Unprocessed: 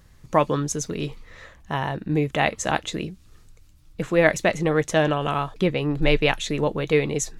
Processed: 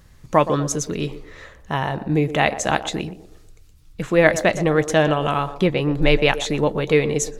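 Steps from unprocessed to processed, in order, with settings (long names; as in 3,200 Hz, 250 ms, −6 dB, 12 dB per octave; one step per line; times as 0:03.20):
0:03.02–0:04.04: parametric band 510 Hz −5 dB 2.4 octaves
feedback echo with a band-pass in the loop 121 ms, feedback 45%, band-pass 510 Hz, level −11 dB
level +3 dB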